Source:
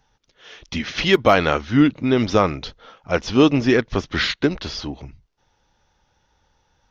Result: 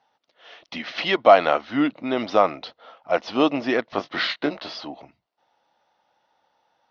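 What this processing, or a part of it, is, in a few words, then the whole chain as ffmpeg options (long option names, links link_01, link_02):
phone earpiece: -filter_complex "[0:a]asettb=1/sr,asplit=3[link_01][link_02][link_03];[link_01]atrim=end=3.864[link_04];[link_02]atrim=start=3.86:end=4.78,asetpts=PTS-STARTPTS,afade=type=in:duration=0.004:curve=qsin,afade=type=out:start_time=0.916:duration=0.004:curve=qsin,asplit=2[link_05][link_06];[link_06]adelay=20,volume=-6.5dB[link_07];[link_05][link_07]amix=inputs=2:normalize=0,atrim=end_sample=40572[link_08];[link_03]atrim=start=4.776[link_09];[link_04][link_08]acrossfade=duration=0.004:curve1=hsin:curve2=qsin[link_10];[link_10][link_09]acrossfade=duration=0.004:curve1=qsin:curve2=hsin,highpass=370,equalizer=frequency=410:width_type=q:width=4:gain=-7,equalizer=frequency=680:width_type=q:width=4:gain=7,equalizer=frequency=1600:width_type=q:width=4:gain=-5,equalizer=frequency=2400:width_type=q:width=4:gain=-4,equalizer=frequency=3400:width_type=q:width=4:gain=-4,lowpass=frequency=4300:width=0.5412,lowpass=frequency=4300:width=1.3066"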